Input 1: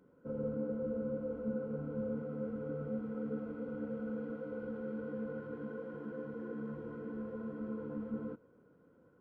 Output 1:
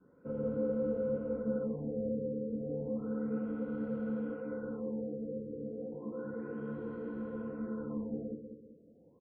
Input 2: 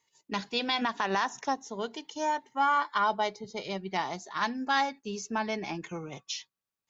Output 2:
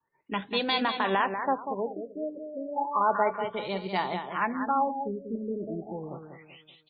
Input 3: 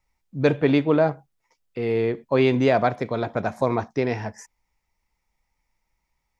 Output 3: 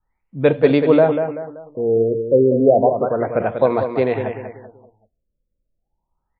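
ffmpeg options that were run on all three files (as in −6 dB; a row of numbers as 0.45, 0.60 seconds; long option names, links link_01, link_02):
-filter_complex "[0:a]bandreject=frequency=60:width_type=h:width=6,bandreject=frequency=120:width_type=h:width=6,adynamicequalizer=threshold=0.0126:dfrequency=520:dqfactor=2.3:tfrequency=520:tqfactor=2.3:attack=5:release=100:ratio=0.375:range=4:mode=boostabove:tftype=bell,asplit=2[link_01][link_02];[link_02]aecho=0:1:192|384|576|768:0.422|0.164|0.0641|0.025[link_03];[link_01][link_03]amix=inputs=2:normalize=0,afftfilt=real='re*lt(b*sr/1024,600*pow(4800/600,0.5+0.5*sin(2*PI*0.32*pts/sr)))':imag='im*lt(b*sr/1024,600*pow(4800/600,0.5+0.5*sin(2*PI*0.32*pts/sr)))':win_size=1024:overlap=0.75,volume=1.5dB"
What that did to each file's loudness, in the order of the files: +3.0, +1.5, +5.5 LU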